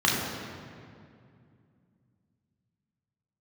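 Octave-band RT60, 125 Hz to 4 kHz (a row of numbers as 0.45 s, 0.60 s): 3.7 s, 3.4 s, 2.5 s, 2.2 s, 2.0 s, 1.5 s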